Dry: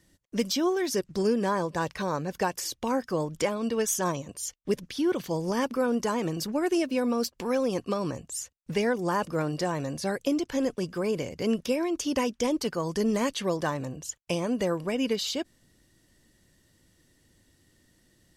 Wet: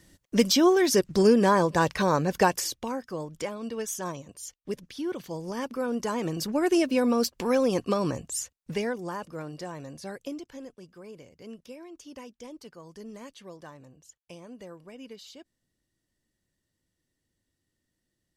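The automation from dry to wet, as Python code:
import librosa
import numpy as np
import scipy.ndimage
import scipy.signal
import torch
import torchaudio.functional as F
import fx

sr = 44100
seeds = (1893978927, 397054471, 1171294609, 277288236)

y = fx.gain(x, sr, db=fx.line((2.53, 6.0), (2.96, -6.0), (5.52, -6.0), (6.75, 3.0), (8.38, 3.0), (9.22, -9.0), (10.25, -9.0), (10.72, -17.0)))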